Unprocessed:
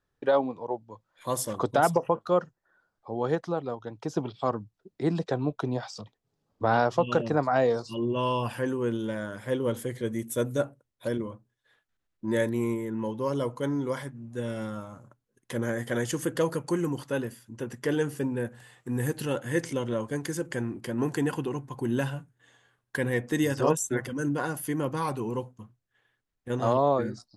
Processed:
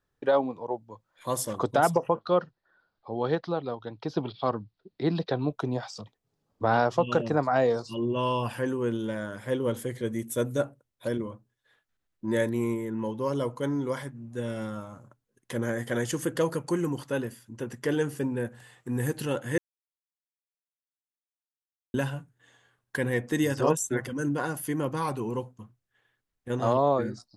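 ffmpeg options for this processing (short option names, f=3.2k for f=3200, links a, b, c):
-filter_complex "[0:a]asettb=1/sr,asplit=3[a][b][c];[a]atrim=end=2.194[d];[b]atrim=start=2.19:end=5.49,asetpts=PTS-STARTPTS,afade=t=in:d=0.004:c=qsin,afade=t=out:st=3.296:d=0.004:c=qsin,highshelf=f=5.7k:t=q:w=3:g=-10.5[e];[c]atrim=start=5.486[f];[d][e]acrossfade=d=0.004:c1=hsin:c2=qsin[g];[g][f]acrossfade=d=0.004:c1=qsin:c2=hsin,asplit=3[h][i][j];[h]atrim=end=19.58,asetpts=PTS-STARTPTS,afade=t=out:st=19.576:d=0.004:c=hsin[k];[i]atrim=start=19.58:end=21.94,asetpts=PTS-STARTPTS,volume=0[l];[j]atrim=start=21.94,asetpts=PTS-STARTPTS,afade=t=in:d=0.004:c=hsin[m];[k][l][m]concat=n=3:v=0:a=1"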